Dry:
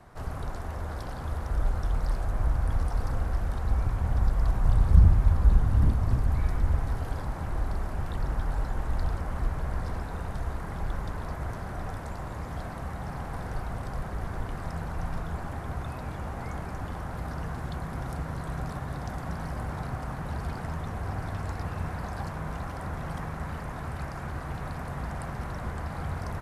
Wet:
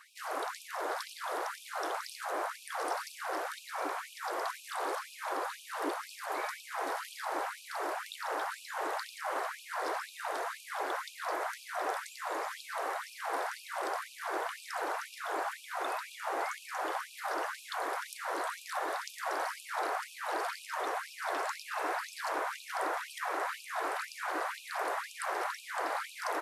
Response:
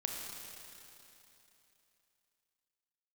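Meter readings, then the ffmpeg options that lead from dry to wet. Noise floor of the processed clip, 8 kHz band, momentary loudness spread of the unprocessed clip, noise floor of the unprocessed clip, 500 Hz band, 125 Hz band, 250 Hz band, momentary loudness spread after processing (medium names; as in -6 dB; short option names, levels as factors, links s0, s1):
-52 dBFS, no reading, 11 LU, -37 dBFS, +2.5 dB, under -40 dB, -11.5 dB, 3 LU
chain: -af "afftfilt=real='re*gte(b*sr/1024,290*pow(2400/290,0.5+0.5*sin(2*PI*2*pts/sr)))':imag='im*gte(b*sr/1024,290*pow(2400/290,0.5+0.5*sin(2*PI*2*pts/sr)))':win_size=1024:overlap=0.75,volume=2.24"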